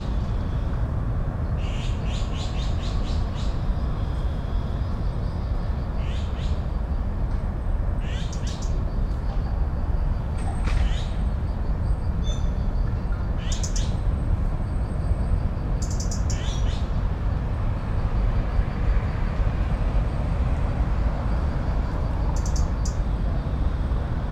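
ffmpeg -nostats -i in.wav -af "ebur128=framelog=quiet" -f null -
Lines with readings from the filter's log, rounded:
Integrated loudness:
  I:         -27.3 LUFS
  Threshold: -37.2 LUFS
Loudness range:
  LRA:         2.4 LU
  Threshold: -47.3 LUFS
  LRA low:   -28.5 LUFS
  LRA high:  -26.1 LUFS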